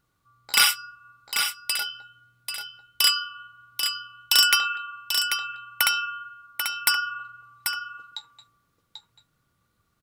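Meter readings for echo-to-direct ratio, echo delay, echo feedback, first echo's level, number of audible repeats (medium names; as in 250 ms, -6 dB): -6.5 dB, 789 ms, no regular repeats, -6.5 dB, 1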